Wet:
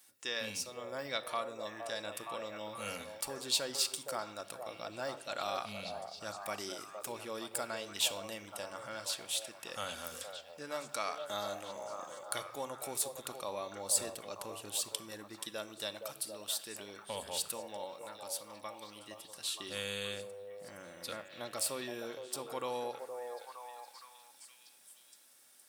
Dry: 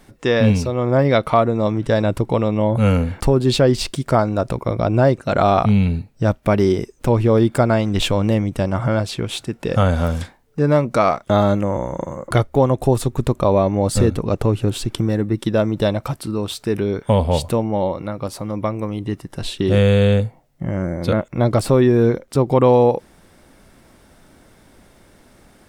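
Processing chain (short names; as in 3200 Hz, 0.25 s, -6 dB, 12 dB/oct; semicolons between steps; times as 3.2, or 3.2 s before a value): differentiator; notch 2100 Hz, Q 18; delay with a stepping band-pass 0.466 s, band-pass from 570 Hz, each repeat 0.7 oct, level -3.5 dB; on a send at -11.5 dB: reverb RT60 0.85 s, pre-delay 4 ms; on the sum: gain -3.5 dB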